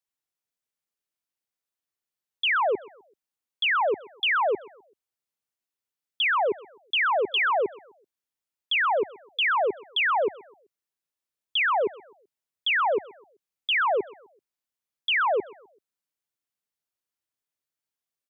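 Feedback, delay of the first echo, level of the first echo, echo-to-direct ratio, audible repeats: 38%, 0.128 s, -21.5 dB, -21.0 dB, 2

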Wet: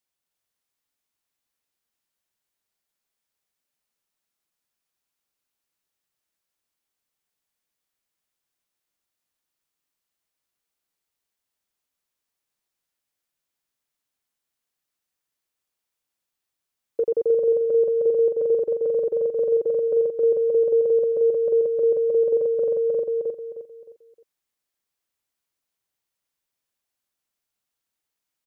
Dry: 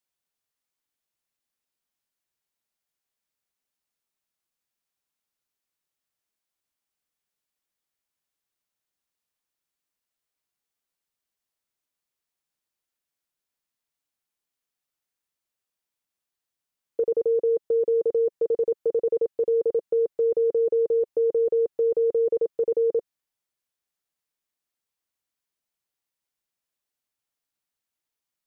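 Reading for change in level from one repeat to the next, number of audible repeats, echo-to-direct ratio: -10.0 dB, 4, -2.5 dB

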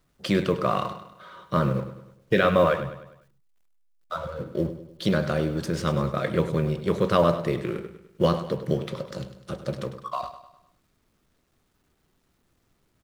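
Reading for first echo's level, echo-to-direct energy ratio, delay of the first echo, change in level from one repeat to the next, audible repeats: -12.0 dB, -11.0 dB, 0.101 s, -6.5 dB, 4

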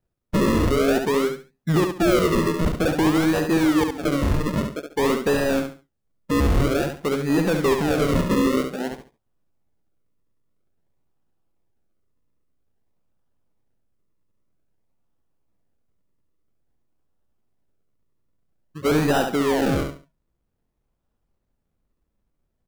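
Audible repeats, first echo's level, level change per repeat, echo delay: 3, -6.0 dB, -12.0 dB, 70 ms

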